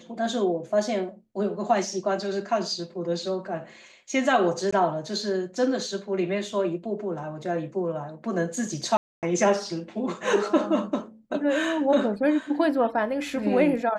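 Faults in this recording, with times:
4.71–4.72 s: dropout 15 ms
8.97–9.23 s: dropout 258 ms

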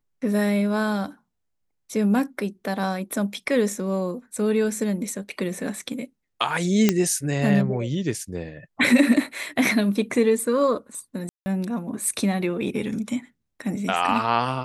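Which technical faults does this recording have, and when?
6.89 s: pop -3 dBFS
11.29–11.46 s: dropout 170 ms

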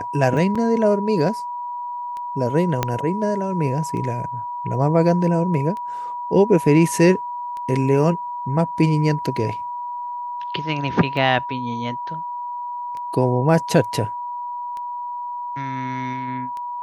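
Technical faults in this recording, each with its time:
tick 33 1/3 rpm
whine 970 Hz -26 dBFS
0.55–0.56 s: dropout 5.3 ms
2.83 s: pop -5 dBFS

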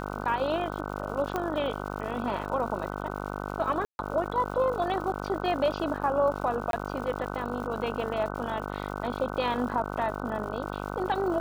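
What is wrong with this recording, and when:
buzz 50 Hz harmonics 30 -35 dBFS
crackle 200 per s -39 dBFS
1.36 s: pop -16 dBFS
3.85–3.99 s: dropout 141 ms
6.71–6.73 s: dropout 22 ms

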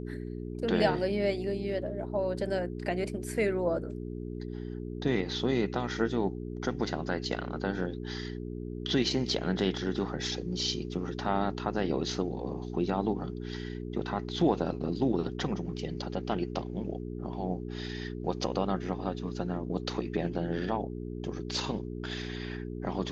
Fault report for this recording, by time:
hum 60 Hz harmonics 7 -38 dBFS

